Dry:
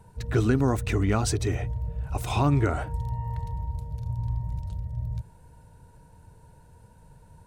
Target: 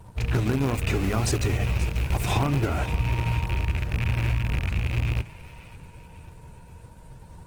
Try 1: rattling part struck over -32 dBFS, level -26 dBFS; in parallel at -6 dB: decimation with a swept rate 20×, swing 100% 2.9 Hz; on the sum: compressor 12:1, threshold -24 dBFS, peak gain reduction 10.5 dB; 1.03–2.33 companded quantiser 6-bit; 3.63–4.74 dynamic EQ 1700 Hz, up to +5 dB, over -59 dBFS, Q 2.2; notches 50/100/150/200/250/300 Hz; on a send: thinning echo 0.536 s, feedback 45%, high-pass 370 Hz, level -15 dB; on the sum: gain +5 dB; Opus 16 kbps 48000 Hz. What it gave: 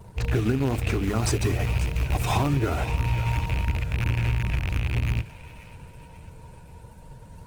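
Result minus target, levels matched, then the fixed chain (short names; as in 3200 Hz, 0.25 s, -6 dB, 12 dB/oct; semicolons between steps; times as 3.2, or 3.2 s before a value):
decimation with a swept rate: distortion -8 dB
rattling part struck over -32 dBFS, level -26 dBFS; in parallel at -6 dB: decimation with a swept rate 69×, swing 100% 2.9 Hz; on the sum: compressor 12:1, threshold -24 dBFS, peak gain reduction 10 dB; 1.03–2.33 companded quantiser 6-bit; 3.63–4.74 dynamic EQ 1700 Hz, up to +5 dB, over -59 dBFS, Q 2.2; notches 50/100/150/200/250/300 Hz; on a send: thinning echo 0.536 s, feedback 45%, high-pass 370 Hz, level -15 dB; on the sum: gain +5 dB; Opus 16 kbps 48000 Hz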